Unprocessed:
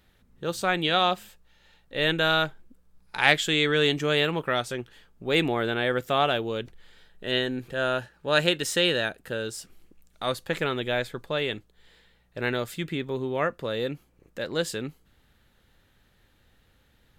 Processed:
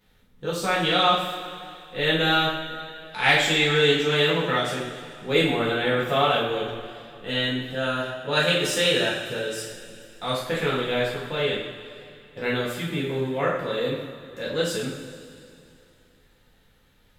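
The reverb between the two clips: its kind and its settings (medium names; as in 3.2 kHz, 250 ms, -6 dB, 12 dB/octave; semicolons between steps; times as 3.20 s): two-slope reverb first 0.59 s, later 2.7 s, from -13 dB, DRR -7.5 dB; trim -5.5 dB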